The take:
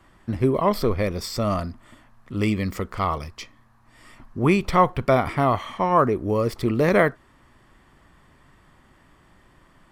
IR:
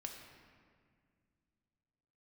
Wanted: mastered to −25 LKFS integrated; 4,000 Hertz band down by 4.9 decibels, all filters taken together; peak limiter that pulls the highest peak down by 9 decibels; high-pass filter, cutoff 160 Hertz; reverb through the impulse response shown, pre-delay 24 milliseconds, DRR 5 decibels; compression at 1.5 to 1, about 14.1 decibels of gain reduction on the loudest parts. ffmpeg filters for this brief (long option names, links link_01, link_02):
-filter_complex "[0:a]highpass=160,equalizer=frequency=4000:width_type=o:gain=-6.5,acompressor=threshold=-54dB:ratio=1.5,alimiter=level_in=3.5dB:limit=-24dB:level=0:latency=1,volume=-3.5dB,asplit=2[link_01][link_02];[1:a]atrim=start_sample=2205,adelay=24[link_03];[link_02][link_03]afir=irnorm=-1:irlink=0,volume=-2dB[link_04];[link_01][link_04]amix=inputs=2:normalize=0,volume=14dB"